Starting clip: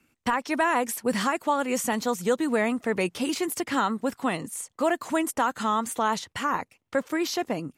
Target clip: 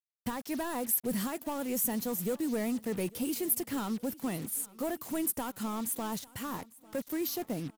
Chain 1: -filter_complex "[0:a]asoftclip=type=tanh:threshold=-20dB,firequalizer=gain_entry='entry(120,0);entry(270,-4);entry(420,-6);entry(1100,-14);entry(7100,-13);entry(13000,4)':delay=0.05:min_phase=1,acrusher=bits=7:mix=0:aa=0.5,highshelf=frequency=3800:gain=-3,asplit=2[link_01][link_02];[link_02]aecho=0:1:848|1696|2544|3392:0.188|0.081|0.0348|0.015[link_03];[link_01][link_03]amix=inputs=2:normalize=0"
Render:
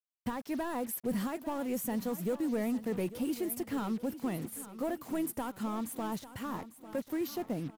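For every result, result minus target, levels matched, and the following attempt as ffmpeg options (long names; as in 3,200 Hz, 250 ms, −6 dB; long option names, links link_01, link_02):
8,000 Hz band −7.0 dB; echo-to-direct +8 dB
-filter_complex "[0:a]asoftclip=type=tanh:threshold=-20dB,firequalizer=gain_entry='entry(120,0);entry(270,-4);entry(420,-6);entry(1100,-14);entry(7100,-13);entry(13000,4)':delay=0.05:min_phase=1,acrusher=bits=7:mix=0:aa=0.5,highshelf=frequency=3800:gain=7.5,asplit=2[link_01][link_02];[link_02]aecho=0:1:848|1696|2544|3392:0.188|0.081|0.0348|0.015[link_03];[link_01][link_03]amix=inputs=2:normalize=0"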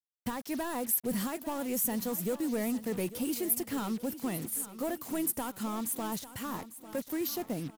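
echo-to-direct +8 dB
-filter_complex "[0:a]asoftclip=type=tanh:threshold=-20dB,firequalizer=gain_entry='entry(120,0);entry(270,-4);entry(420,-6);entry(1100,-14);entry(7100,-13);entry(13000,4)':delay=0.05:min_phase=1,acrusher=bits=7:mix=0:aa=0.5,highshelf=frequency=3800:gain=7.5,asplit=2[link_01][link_02];[link_02]aecho=0:1:848|1696|2544:0.075|0.0322|0.0139[link_03];[link_01][link_03]amix=inputs=2:normalize=0"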